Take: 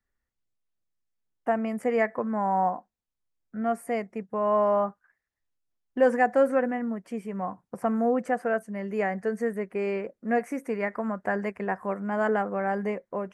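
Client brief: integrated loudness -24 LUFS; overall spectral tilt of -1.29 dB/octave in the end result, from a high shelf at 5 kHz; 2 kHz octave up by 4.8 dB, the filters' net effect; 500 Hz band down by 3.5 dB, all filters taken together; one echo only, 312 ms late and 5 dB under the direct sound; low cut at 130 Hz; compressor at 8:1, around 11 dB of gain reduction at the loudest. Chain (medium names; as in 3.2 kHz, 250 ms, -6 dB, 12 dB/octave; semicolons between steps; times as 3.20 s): high-pass 130 Hz; peaking EQ 500 Hz -4.5 dB; peaking EQ 2 kHz +6.5 dB; treble shelf 5 kHz -3.5 dB; compression 8:1, threshold -28 dBFS; delay 312 ms -5 dB; trim +9 dB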